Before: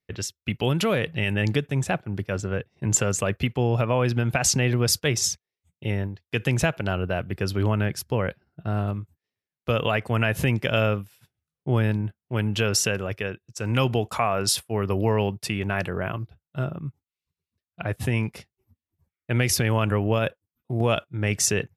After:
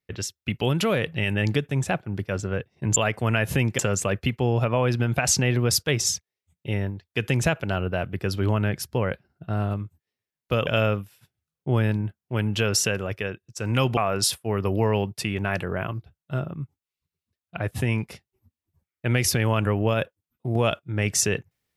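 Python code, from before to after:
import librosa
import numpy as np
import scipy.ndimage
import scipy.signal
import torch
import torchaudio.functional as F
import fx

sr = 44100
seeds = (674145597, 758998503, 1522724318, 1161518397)

y = fx.edit(x, sr, fx.move(start_s=9.84, length_s=0.83, to_s=2.96),
    fx.cut(start_s=13.97, length_s=0.25), tone=tone)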